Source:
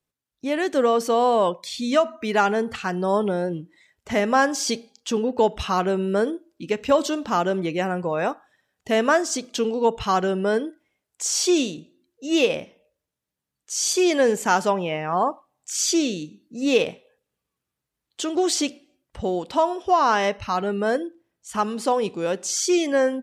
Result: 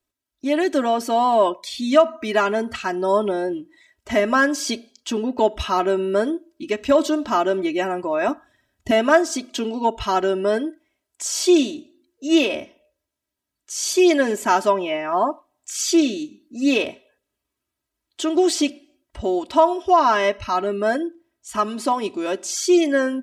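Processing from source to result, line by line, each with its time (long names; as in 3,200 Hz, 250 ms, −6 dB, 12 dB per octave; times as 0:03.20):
0:08.28–0:08.91: bass and treble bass +13 dB, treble +1 dB
whole clip: dynamic equaliser 6,400 Hz, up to −4 dB, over −37 dBFS, Q 1; comb filter 3.1 ms, depth 84%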